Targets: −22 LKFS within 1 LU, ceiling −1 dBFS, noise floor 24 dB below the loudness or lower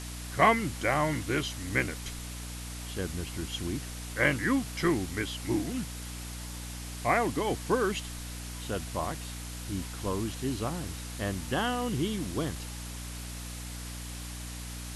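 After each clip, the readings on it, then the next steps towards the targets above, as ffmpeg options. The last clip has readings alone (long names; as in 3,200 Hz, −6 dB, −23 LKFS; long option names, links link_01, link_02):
mains hum 60 Hz; hum harmonics up to 300 Hz; level of the hum −38 dBFS; background noise floor −40 dBFS; target noise floor −56 dBFS; integrated loudness −32.0 LKFS; sample peak −9.5 dBFS; target loudness −22.0 LKFS
→ -af "bandreject=frequency=60:width_type=h:width=6,bandreject=frequency=120:width_type=h:width=6,bandreject=frequency=180:width_type=h:width=6,bandreject=frequency=240:width_type=h:width=6,bandreject=frequency=300:width_type=h:width=6"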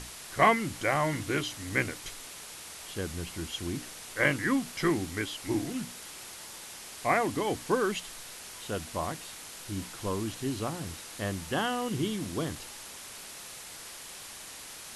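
mains hum none found; background noise floor −45 dBFS; target noise floor −57 dBFS
→ -af "afftdn=noise_reduction=12:noise_floor=-45"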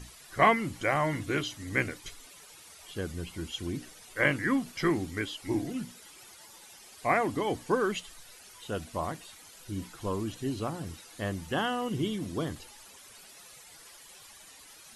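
background noise floor −52 dBFS; target noise floor −56 dBFS
→ -af "afftdn=noise_reduction=6:noise_floor=-52"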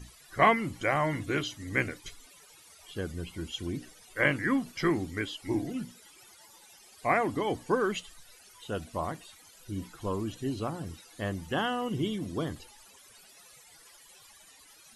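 background noise floor −56 dBFS; integrated loudness −31.5 LKFS; sample peak −9.5 dBFS; target loudness −22.0 LKFS
→ -af "volume=9.5dB,alimiter=limit=-1dB:level=0:latency=1"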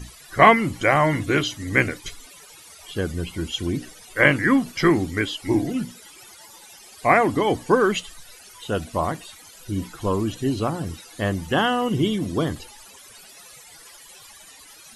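integrated loudness −22.0 LKFS; sample peak −1.0 dBFS; background noise floor −47 dBFS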